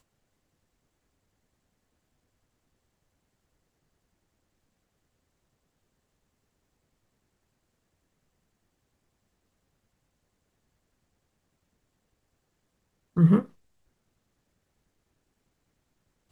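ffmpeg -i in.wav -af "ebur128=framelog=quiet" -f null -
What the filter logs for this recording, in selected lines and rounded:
Integrated loudness:
  I:         -22.3 LUFS
  Threshold: -33.7 LUFS
Loudness range:
  LRA:         2.1 LU
  Threshold: -50.3 LUFS
  LRA low:   -32.2 LUFS
  LRA high:  -30.1 LUFS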